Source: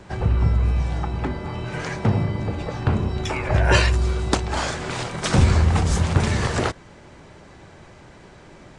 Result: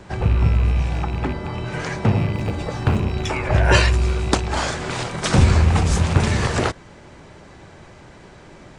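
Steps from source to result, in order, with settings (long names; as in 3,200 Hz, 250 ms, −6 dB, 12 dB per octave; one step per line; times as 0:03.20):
loose part that buzzes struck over −23 dBFS, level −27 dBFS
0:02.33–0:03.00: high-shelf EQ 8,900 Hz +11.5 dB
level +2 dB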